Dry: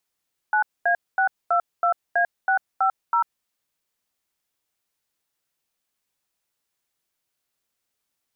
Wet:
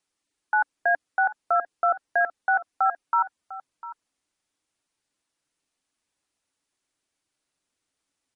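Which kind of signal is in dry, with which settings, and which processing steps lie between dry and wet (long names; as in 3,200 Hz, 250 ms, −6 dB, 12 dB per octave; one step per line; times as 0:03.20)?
touch tones "9A622A650", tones 95 ms, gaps 230 ms, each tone −19.5 dBFS
parametric band 290 Hz +9.5 dB 0.36 octaves
slap from a distant wall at 120 metres, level −15 dB
MP3 40 kbit/s 48,000 Hz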